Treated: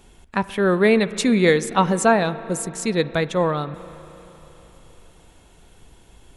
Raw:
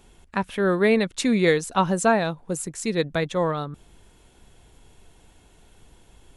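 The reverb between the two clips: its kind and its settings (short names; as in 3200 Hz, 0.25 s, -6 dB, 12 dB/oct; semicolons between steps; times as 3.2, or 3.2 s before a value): spring tank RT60 3.8 s, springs 33/39 ms, chirp 35 ms, DRR 14.5 dB; gain +3 dB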